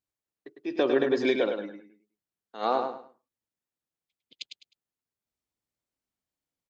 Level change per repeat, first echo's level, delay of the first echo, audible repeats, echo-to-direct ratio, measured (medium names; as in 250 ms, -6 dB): -11.5 dB, -6.0 dB, 103 ms, 3, -5.5 dB